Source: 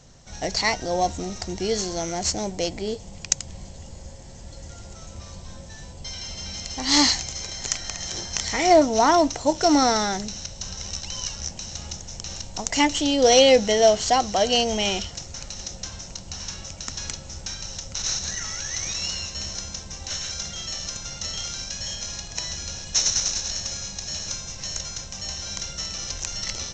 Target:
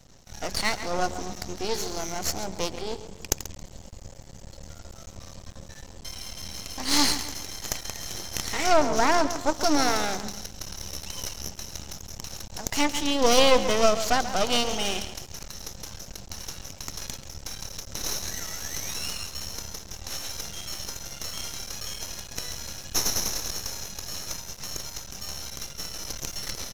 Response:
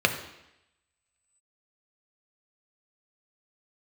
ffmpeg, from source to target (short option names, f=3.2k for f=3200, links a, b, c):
-filter_complex "[0:a]asettb=1/sr,asplit=3[a][b][c];[a]atrim=end=25.504[d];[b]atrim=start=25.5:end=26.03,asetpts=PTS-STARTPTS,afade=t=in:d=0.004:c=qsin,afade=t=out:st=0.526:d=0.004:c=qsin,agate=range=-33dB:threshold=-30dB:ratio=3:detection=peak[e];[c]atrim=start=26.026[f];[d][e]acrossfade=d=0.004:c1=hsin:c2=qsin[g];[g][f]acrossfade=d=0.004:c1=qsin:c2=hsin,asplit=2[h][i];[i]adelay=136,lowpass=f=5k:p=1,volume=-11.5dB,asplit=2[j][k];[k]adelay=136,lowpass=f=5k:p=1,volume=0.41,asplit=2[l][m];[m]adelay=136,lowpass=f=5k:p=1,volume=0.41,asplit=2[n][o];[o]adelay=136,lowpass=f=5k:p=1,volume=0.41[p];[h][j][l][n][p]amix=inputs=5:normalize=0,aeval=exprs='max(val(0),0)':c=same"